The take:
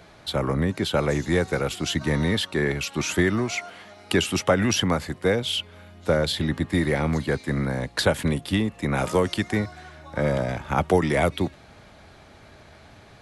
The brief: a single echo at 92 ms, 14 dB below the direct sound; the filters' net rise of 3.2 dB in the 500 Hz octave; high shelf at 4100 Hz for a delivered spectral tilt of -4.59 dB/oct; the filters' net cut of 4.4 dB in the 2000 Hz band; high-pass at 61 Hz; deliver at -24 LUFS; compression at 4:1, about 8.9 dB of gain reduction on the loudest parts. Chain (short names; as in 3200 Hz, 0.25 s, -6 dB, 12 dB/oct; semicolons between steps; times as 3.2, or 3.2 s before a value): HPF 61 Hz; bell 500 Hz +4 dB; bell 2000 Hz -7 dB; high shelf 4100 Hz +5.5 dB; compressor 4:1, threshold -24 dBFS; echo 92 ms -14 dB; gain +4.5 dB